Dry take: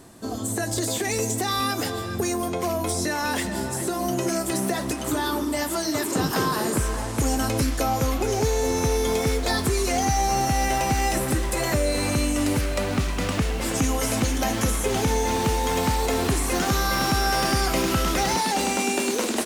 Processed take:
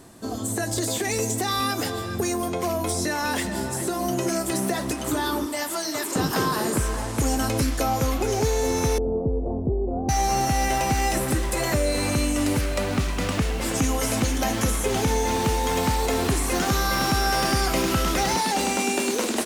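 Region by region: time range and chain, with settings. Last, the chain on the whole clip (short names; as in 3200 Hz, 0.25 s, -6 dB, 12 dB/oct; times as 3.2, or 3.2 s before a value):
5.46–6.16 HPF 91 Hz + low shelf 300 Hz -11.5 dB
8.98–10.09 minimum comb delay 0.36 ms + inverse Chebyshev low-pass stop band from 1800 Hz, stop band 50 dB
whole clip: dry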